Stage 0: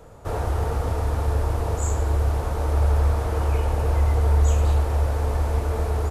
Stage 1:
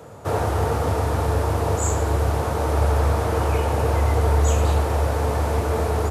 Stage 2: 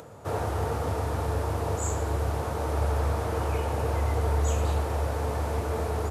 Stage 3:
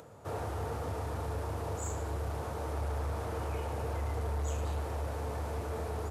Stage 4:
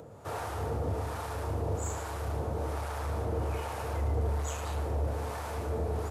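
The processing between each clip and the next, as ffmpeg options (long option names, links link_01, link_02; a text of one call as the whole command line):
ffmpeg -i in.wav -af "highpass=frequency=86:width=0.5412,highpass=frequency=86:width=1.3066,volume=6dB" out.wav
ffmpeg -i in.wav -af "acompressor=mode=upward:threshold=-35dB:ratio=2.5,volume=-7dB" out.wav
ffmpeg -i in.wav -af "asoftclip=type=tanh:threshold=-21dB,volume=-6.5dB" out.wav
ffmpeg -i in.wav -filter_complex "[0:a]acrossover=split=710[link_01][link_02];[link_01]aeval=exprs='val(0)*(1-0.7/2+0.7/2*cos(2*PI*1.2*n/s))':channel_layout=same[link_03];[link_02]aeval=exprs='val(0)*(1-0.7/2-0.7/2*cos(2*PI*1.2*n/s))':channel_layout=same[link_04];[link_03][link_04]amix=inputs=2:normalize=0,volume=6dB" out.wav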